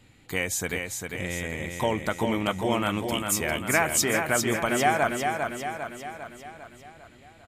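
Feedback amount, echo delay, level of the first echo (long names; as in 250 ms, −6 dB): 55%, 400 ms, −5.0 dB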